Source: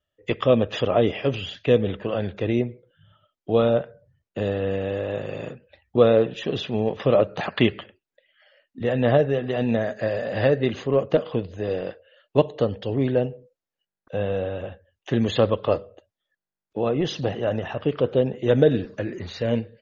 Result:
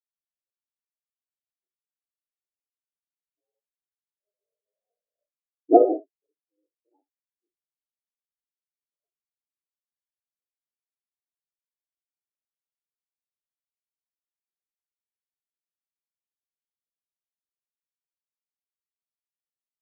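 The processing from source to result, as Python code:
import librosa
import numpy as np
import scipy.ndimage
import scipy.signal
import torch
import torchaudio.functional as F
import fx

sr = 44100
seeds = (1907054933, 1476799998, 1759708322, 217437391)

p1 = fx.cycle_switch(x, sr, every=2, mode='inverted')
p2 = fx.doppler_pass(p1, sr, speed_mps=16, closest_m=1.8, pass_at_s=5.55)
p3 = scipy.signal.sosfilt(scipy.signal.butter(6, 280.0, 'highpass', fs=sr, output='sos'), p2)
p4 = fx.fold_sine(p3, sr, drive_db=5, ceiling_db=-9.0)
p5 = p4 + fx.echo_single(p4, sr, ms=71, db=-4.5, dry=0)
p6 = fx.spectral_expand(p5, sr, expansion=4.0)
y = p6 * 10.0 ** (4.5 / 20.0)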